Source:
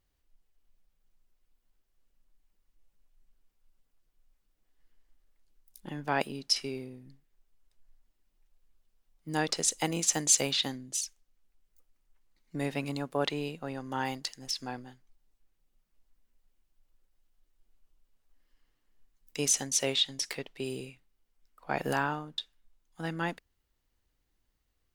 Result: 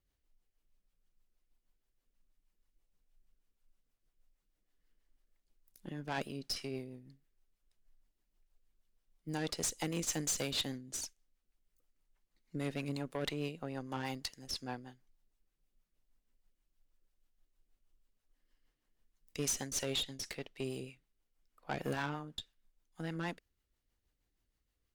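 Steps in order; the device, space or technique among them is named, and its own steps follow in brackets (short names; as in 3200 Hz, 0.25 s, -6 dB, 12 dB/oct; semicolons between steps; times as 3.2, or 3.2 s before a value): overdriven rotary cabinet (tube stage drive 28 dB, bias 0.55; rotary speaker horn 6.3 Hz)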